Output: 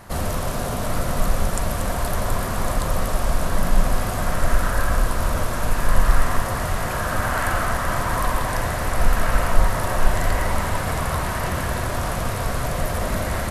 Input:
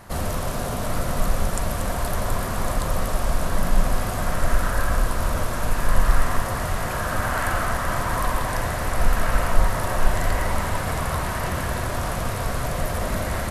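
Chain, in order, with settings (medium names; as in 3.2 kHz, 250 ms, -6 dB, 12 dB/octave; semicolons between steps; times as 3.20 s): 9.48–9.96 s: crackle 24 per s -45 dBFS; trim +1.5 dB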